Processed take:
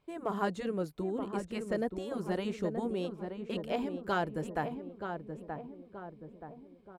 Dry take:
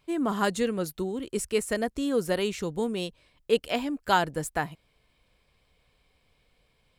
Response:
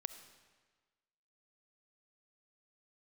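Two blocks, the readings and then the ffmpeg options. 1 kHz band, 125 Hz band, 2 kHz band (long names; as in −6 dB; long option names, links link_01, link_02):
−6.5 dB, −3.0 dB, −8.5 dB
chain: -filter_complex "[0:a]tiltshelf=frequency=1300:gain=7,afftfilt=real='re*lt(hypot(re,im),0.794)':imag='im*lt(hypot(re,im),0.794)':win_size=1024:overlap=0.75,lowshelf=frequency=150:gain=-9.5,asplit=2[link_01][link_02];[link_02]adelay=927,lowpass=frequency=1200:poles=1,volume=-6dB,asplit=2[link_03][link_04];[link_04]adelay=927,lowpass=frequency=1200:poles=1,volume=0.52,asplit=2[link_05][link_06];[link_06]adelay=927,lowpass=frequency=1200:poles=1,volume=0.52,asplit=2[link_07][link_08];[link_08]adelay=927,lowpass=frequency=1200:poles=1,volume=0.52,asplit=2[link_09][link_10];[link_10]adelay=927,lowpass=frequency=1200:poles=1,volume=0.52,asplit=2[link_11][link_12];[link_12]adelay=927,lowpass=frequency=1200:poles=1,volume=0.52[link_13];[link_01][link_03][link_05][link_07][link_09][link_11][link_13]amix=inputs=7:normalize=0,acrossover=split=6100[link_14][link_15];[link_15]acompressor=threshold=-53dB:ratio=4:attack=1:release=60[link_16];[link_14][link_16]amix=inputs=2:normalize=0,asplit=2[link_17][link_18];[link_18]asoftclip=type=hard:threshold=-19.5dB,volume=-10dB[link_19];[link_17][link_19]amix=inputs=2:normalize=0,volume=-9dB"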